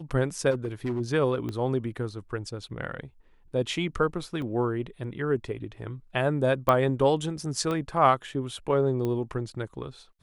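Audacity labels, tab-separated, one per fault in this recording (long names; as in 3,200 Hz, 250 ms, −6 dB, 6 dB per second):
0.500000	1.010000	clipping −24.5 dBFS
1.490000	1.490000	click −21 dBFS
4.420000	4.420000	drop-out 2 ms
6.690000	6.690000	click −11 dBFS
7.710000	7.710000	click −18 dBFS
9.050000	9.050000	click −19 dBFS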